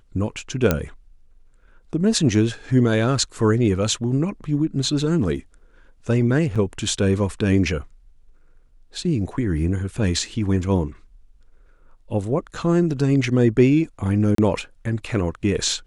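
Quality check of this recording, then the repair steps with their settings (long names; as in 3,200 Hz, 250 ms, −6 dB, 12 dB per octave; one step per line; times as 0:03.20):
0:00.71: click −4 dBFS
0:06.55–0:06.56: drop-out 6.1 ms
0:14.35–0:14.38: drop-out 33 ms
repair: click removal
repair the gap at 0:06.55, 6.1 ms
repair the gap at 0:14.35, 33 ms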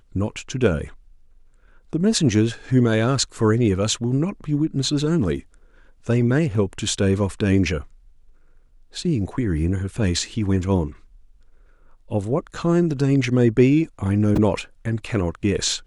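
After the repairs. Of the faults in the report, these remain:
0:00.71: click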